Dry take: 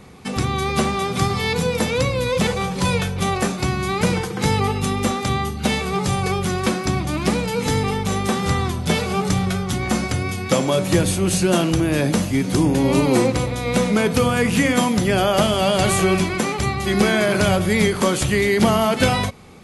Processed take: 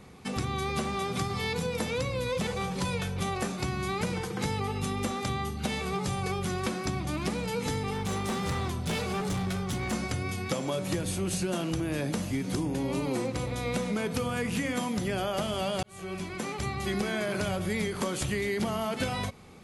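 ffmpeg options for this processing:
ffmpeg -i in.wav -filter_complex "[0:a]asettb=1/sr,asplit=3[link_01][link_02][link_03];[link_01]atrim=end=7.934[link_04];[link_02]atrim=start=7.93:end=9.93,asetpts=PTS-STARTPTS,afade=type=in:duration=0.004:curve=qsin,afade=type=out:start_time=1.996:duration=0.004:curve=qsin,asoftclip=type=hard:threshold=-18.5dB[link_05];[link_03]atrim=start=9.926[link_06];[link_04][link_05]acrossfade=duration=0.004:curve1=hsin:curve2=qsin[link_07];[link_07][link_06]acrossfade=duration=0.004:curve1=qsin:curve2=hsin,asplit=2[link_08][link_09];[link_08]atrim=end=15.83,asetpts=PTS-STARTPTS,afade=type=out:start_time=15.826:duration=0.004:curve=hsin[link_10];[link_09]atrim=start=15.83,asetpts=PTS-STARTPTS,afade=type=in:duration=1.17[link_11];[link_10][link_11]concat=n=2:v=0:a=1,acompressor=threshold=-20dB:ratio=6,volume=-7dB" out.wav

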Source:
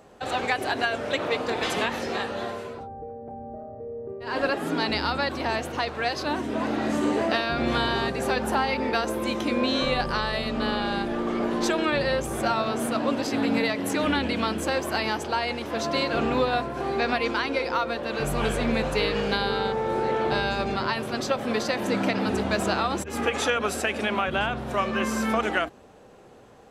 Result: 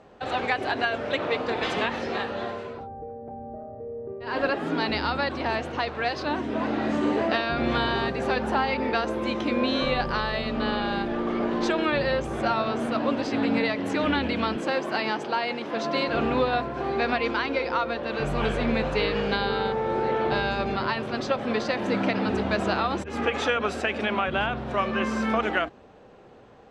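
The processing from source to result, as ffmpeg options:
ffmpeg -i in.wav -filter_complex "[0:a]asettb=1/sr,asplit=3[link_01][link_02][link_03];[link_01]atrim=end=14.564[link_04];[link_02]atrim=start=14.56:end=16.08,asetpts=PTS-STARTPTS,afade=type=in:duration=0.004:curve=qsin,afade=type=out:start_time=1.516:duration=0.004:curve=qsin,highpass=frequency=140:width=0.5412,highpass=frequency=140:width=1.3066[link_05];[link_03]atrim=start=16.076[link_06];[link_04][link_05]acrossfade=duration=0.004:curve1=hsin:curve2=qsin[link_07];[link_07][link_06]acrossfade=duration=0.004:curve1=qsin:curve2=hsin,lowpass=4200" out.wav

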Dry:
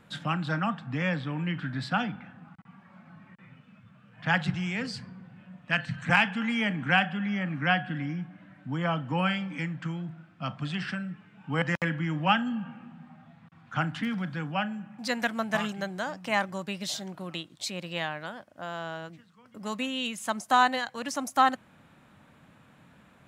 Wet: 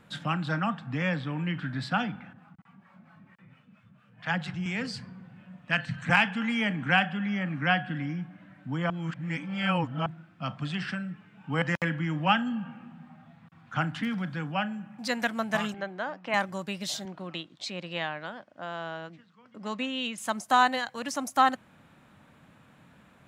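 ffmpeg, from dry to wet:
ffmpeg -i in.wav -filter_complex "[0:a]asettb=1/sr,asplit=3[link_01][link_02][link_03];[link_01]atrim=end=2.334[link_04];[link_02]atrim=start=2.33:end=4.66,asetpts=PTS-STARTPTS,afade=type=in:duration=0.004:curve=qsin,afade=type=out:start_time=2.326:duration=0.004:curve=qsin,acrossover=split=550[link_05][link_06];[link_05]aeval=exprs='val(0)*(1-0.7/2+0.7/2*cos(2*PI*4.4*n/s))':channel_layout=same[link_07];[link_06]aeval=exprs='val(0)*(1-0.7/2-0.7/2*cos(2*PI*4.4*n/s))':channel_layout=same[link_08];[link_07][link_08]amix=inputs=2:normalize=0[link_09];[link_03]atrim=start=4.656[link_10];[link_04][link_09]acrossfade=duration=0.004:curve1=hsin:curve2=qsin[link_11];[link_11][link_10]acrossfade=duration=0.004:curve1=qsin:curve2=hsin,asettb=1/sr,asplit=3[link_12][link_13][link_14];[link_12]atrim=end=15.744[link_15];[link_13]atrim=start=15.74:end=16.34,asetpts=PTS-STARTPTS,afade=type=in:duration=0.004:curve=qsin,afade=type=out:start_time=0.596:duration=0.004:curve=qsin,highpass=250,lowpass=2800[link_16];[link_14]atrim=start=16.336[link_17];[link_15][link_16]acrossfade=duration=0.004:curve1=hsin:curve2=qsin[link_18];[link_18][link_17]acrossfade=duration=0.004:curve1=qsin:curve2=hsin,asettb=1/sr,asplit=3[link_19][link_20][link_21];[link_19]atrim=end=17.054[link_22];[link_20]atrim=start=17.05:end=20.18,asetpts=PTS-STARTPTS,afade=type=in:duration=0.004:curve=qsin,afade=type=out:start_time=3.126:duration=0.004:curve=qsin,highpass=140,lowpass=5000[link_23];[link_21]atrim=start=20.176[link_24];[link_22][link_23]acrossfade=duration=0.004:curve1=hsin:curve2=qsin[link_25];[link_25][link_24]acrossfade=duration=0.004:curve1=qsin:curve2=hsin,asplit=3[link_26][link_27][link_28];[link_26]atrim=end=8.902[link_29];[link_27]atrim=start=8.898:end=10.062,asetpts=PTS-STARTPTS,areverse[link_30];[link_28]atrim=start=10.058[link_31];[link_29][link_30]acrossfade=duration=0.004:curve1=hsin:curve2=hsin[link_32];[link_32][link_31]acrossfade=duration=0.004:curve1=hsin:curve2=hsin" out.wav

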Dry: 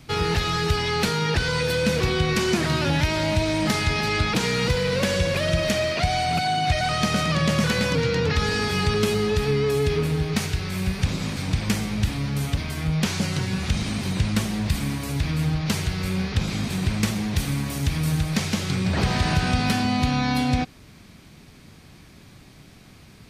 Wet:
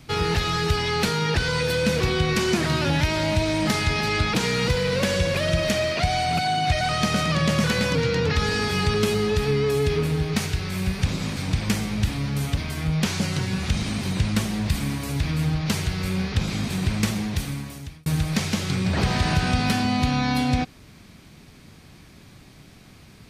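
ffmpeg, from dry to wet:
ffmpeg -i in.wav -filter_complex "[0:a]asplit=2[link_01][link_02];[link_01]atrim=end=18.06,asetpts=PTS-STARTPTS,afade=type=out:start_time=17.16:duration=0.9[link_03];[link_02]atrim=start=18.06,asetpts=PTS-STARTPTS,afade=type=in:duration=0.004:curve=hsin[link_04];[link_03][link_04]concat=n=2:v=0:a=1" out.wav

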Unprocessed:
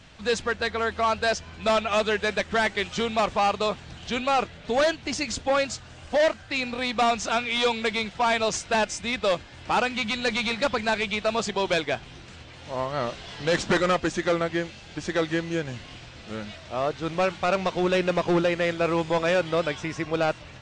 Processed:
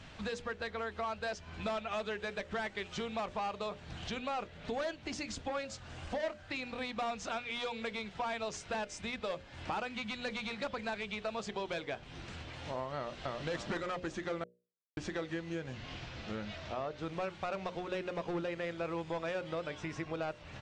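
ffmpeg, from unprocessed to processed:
ffmpeg -i in.wav -filter_complex "[0:a]asplit=2[link_01][link_02];[link_02]afade=type=in:start_time=12.97:duration=0.01,afade=type=out:start_time=13.43:duration=0.01,aecho=0:1:280|560|840|1120|1400|1680:1|0.4|0.16|0.064|0.0256|0.01024[link_03];[link_01][link_03]amix=inputs=2:normalize=0,asettb=1/sr,asplit=3[link_04][link_05][link_06];[link_04]atrim=end=15.734[link_07];[link_05]atrim=start=15.73:end=16.98,asetpts=PTS-STARTPTS,afade=type=in:duration=0.004:curve=qsin,afade=type=out:start_time=1.246:duration=0.004:curve=qsin,lowpass=frequency=7000:width=0.5412,lowpass=frequency=7000:width=1.3066[link_08];[link_06]atrim=start=16.976[link_09];[link_07][link_08]acrossfade=duration=0.004:curve1=hsin:curve2=qsin[link_10];[link_10][link_09]acrossfade=duration=0.004:curve1=qsin:curve2=hsin,asplit=3[link_11][link_12][link_13];[link_11]atrim=end=14.44,asetpts=PTS-STARTPTS,afade=type=out:start_time=14.436:duration=0.004:curve=hsin[link_14];[link_12]atrim=start=14.44:end=14.97,asetpts=PTS-STARTPTS,volume=0[link_15];[link_13]atrim=start=14.97,asetpts=PTS-STARTPTS,afade=type=in:duration=0.004:curve=hsin[link_16];[link_14][link_15][link_16]concat=n=3:v=0:a=1,acompressor=threshold=-37dB:ratio=4,highshelf=frequency=4200:gain=-6.5,bandreject=frequency=60:width_type=h:width=6,bandreject=frequency=120:width_type=h:width=6,bandreject=frequency=180:width_type=h:width=6,bandreject=frequency=240:width_type=h:width=6,bandreject=frequency=300:width_type=h:width=6,bandreject=frequency=360:width_type=h:width=6,bandreject=frequency=420:width_type=h:width=6,bandreject=frequency=480:width_type=h:width=6,bandreject=frequency=540:width_type=h:width=6,bandreject=frequency=600:width_type=h:width=6" out.wav

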